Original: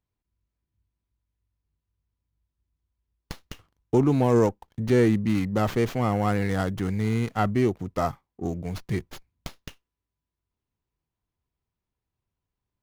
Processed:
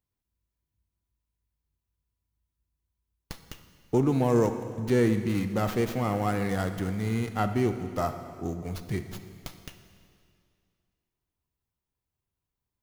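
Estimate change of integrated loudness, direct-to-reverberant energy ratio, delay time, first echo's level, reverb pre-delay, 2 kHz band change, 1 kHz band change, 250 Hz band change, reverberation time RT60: -3.0 dB, 8.0 dB, none, none, 6 ms, -2.5 dB, -2.5 dB, -3.0 dB, 2.3 s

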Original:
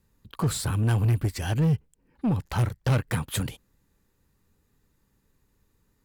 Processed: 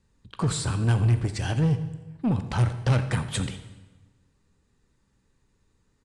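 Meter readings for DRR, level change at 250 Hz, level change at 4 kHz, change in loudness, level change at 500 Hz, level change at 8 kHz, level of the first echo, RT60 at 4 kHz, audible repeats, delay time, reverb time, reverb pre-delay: 9.5 dB, +0.5 dB, +1.5 dB, +0.5 dB, +0.5 dB, 0.0 dB, -17.5 dB, 1.0 s, 1, 84 ms, 1.3 s, 15 ms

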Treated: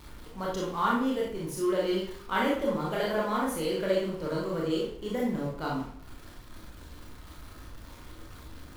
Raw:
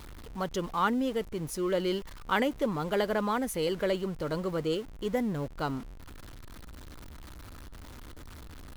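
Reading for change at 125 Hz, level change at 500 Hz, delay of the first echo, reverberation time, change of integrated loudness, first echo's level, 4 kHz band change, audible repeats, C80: -0.5 dB, +1.0 dB, none, 0.60 s, +1.0 dB, none, 0.0 dB, none, 6.5 dB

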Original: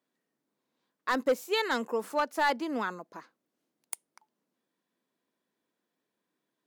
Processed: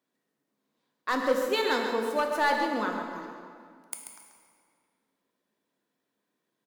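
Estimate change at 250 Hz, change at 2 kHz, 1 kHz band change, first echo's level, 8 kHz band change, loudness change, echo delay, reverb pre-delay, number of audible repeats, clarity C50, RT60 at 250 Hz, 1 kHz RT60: +2.5 dB, +2.5 dB, +3.0 dB, -8.5 dB, +2.0 dB, +2.5 dB, 0.136 s, 8 ms, 1, 3.0 dB, 2.3 s, 2.1 s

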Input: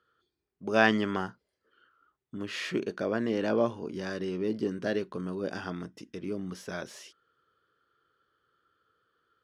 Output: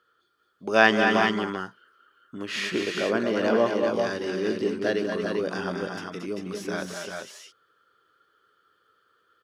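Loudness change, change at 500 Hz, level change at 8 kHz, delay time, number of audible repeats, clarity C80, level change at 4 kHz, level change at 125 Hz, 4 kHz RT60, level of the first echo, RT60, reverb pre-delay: +5.5 dB, +6.5 dB, +8.5 dB, 0.147 s, 3, none, +8.5 dB, +1.5 dB, none, -18.0 dB, none, none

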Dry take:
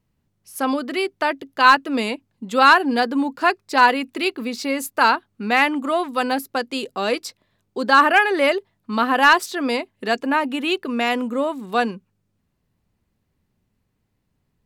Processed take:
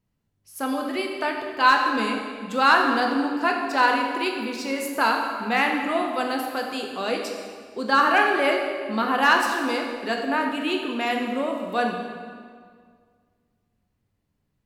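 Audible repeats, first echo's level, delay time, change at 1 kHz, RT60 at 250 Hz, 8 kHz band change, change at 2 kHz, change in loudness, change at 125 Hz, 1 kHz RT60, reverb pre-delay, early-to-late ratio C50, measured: none, none, none, -3.5 dB, 2.1 s, -4.0 dB, -3.5 dB, -3.5 dB, n/a, 1.9 s, 11 ms, 3.5 dB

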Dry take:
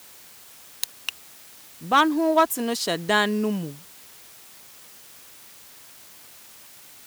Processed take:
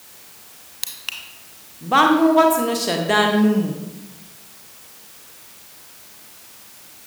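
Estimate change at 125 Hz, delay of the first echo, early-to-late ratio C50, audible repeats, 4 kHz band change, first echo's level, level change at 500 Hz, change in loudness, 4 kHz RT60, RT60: +7.0 dB, none, 4.0 dB, none, +3.5 dB, none, +5.0 dB, +5.0 dB, 0.60 s, 1.1 s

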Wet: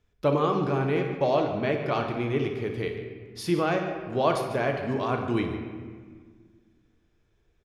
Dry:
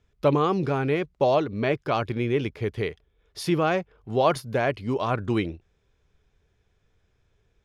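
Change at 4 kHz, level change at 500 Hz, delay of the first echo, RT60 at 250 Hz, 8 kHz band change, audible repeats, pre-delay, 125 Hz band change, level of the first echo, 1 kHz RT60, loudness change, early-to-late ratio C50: -2.0 dB, -1.5 dB, 60 ms, 2.3 s, -2.5 dB, 2, 3 ms, -2.0 dB, -12.0 dB, 1.6 s, -1.5 dB, 4.5 dB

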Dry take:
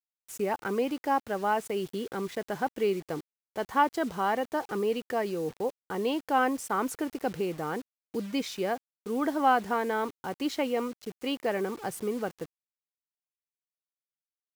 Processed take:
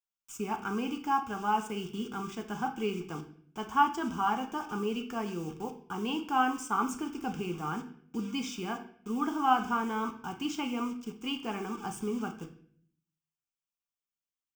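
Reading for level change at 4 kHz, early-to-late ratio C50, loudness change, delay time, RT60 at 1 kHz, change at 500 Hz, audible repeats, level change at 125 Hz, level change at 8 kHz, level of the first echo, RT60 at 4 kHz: -0.5 dB, 10.5 dB, -2.5 dB, none, 0.50 s, -9.0 dB, none, +0.5 dB, -1.5 dB, none, 0.50 s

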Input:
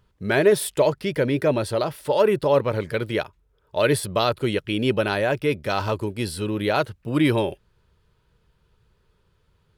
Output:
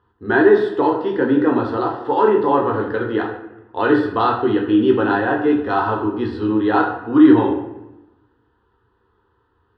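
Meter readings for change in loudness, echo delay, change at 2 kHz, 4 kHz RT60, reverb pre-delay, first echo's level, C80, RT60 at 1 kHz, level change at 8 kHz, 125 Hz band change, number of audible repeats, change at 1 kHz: +5.5 dB, none, +4.5 dB, 0.60 s, 13 ms, none, 8.5 dB, 0.95 s, under -30 dB, -2.5 dB, none, +8.5 dB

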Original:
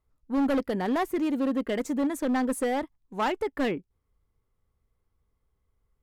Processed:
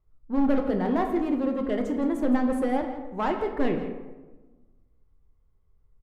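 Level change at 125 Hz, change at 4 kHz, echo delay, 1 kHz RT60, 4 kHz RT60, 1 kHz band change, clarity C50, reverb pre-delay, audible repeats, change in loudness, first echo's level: +4.5 dB, -5.5 dB, 0.166 s, 1.2 s, 0.65 s, +1.0 dB, 6.5 dB, 4 ms, 1, +1.5 dB, -14.0 dB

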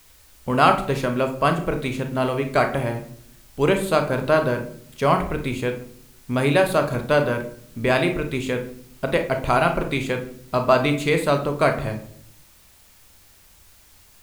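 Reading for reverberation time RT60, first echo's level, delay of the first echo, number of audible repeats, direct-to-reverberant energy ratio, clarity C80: 0.60 s, none, none, none, 5.0 dB, 14.0 dB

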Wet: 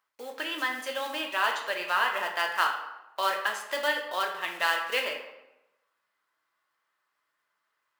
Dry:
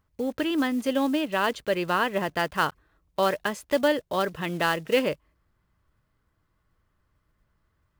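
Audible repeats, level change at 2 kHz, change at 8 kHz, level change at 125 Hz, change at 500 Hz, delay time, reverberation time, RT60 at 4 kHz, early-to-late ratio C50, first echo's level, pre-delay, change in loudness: none, +1.5 dB, -0.5 dB, under -25 dB, -8.5 dB, none, 0.95 s, 0.65 s, 6.5 dB, none, 3 ms, -2.5 dB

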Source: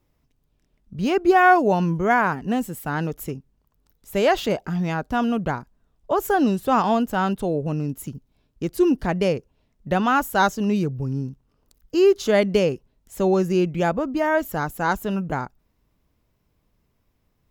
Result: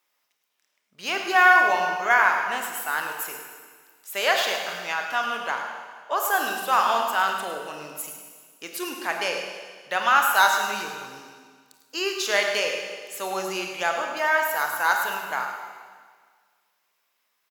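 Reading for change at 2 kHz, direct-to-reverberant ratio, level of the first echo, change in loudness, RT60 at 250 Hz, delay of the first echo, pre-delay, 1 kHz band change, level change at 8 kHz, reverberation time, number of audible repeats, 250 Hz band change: +5.5 dB, 2.0 dB, -10.5 dB, -1.5 dB, 1.7 s, 0.106 s, 27 ms, 0.0 dB, +6.5 dB, 1.7 s, 1, -18.5 dB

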